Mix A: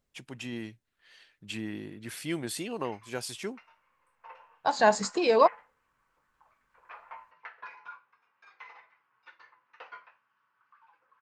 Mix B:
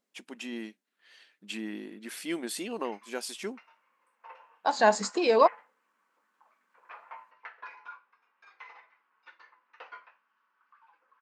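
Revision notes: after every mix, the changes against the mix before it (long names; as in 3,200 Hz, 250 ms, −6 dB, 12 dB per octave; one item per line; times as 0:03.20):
master: add linear-phase brick-wall high-pass 180 Hz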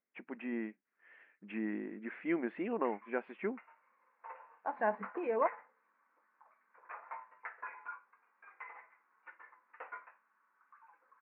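second voice −11.0 dB
master: add Butterworth low-pass 2,300 Hz 48 dB per octave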